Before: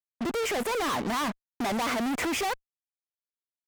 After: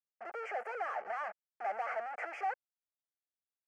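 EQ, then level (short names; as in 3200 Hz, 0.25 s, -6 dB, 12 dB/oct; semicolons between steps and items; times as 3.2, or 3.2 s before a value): ladder band-pass 1000 Hz, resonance 45%; fixed phaser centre 1000 Hz, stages 6; +7.0 dB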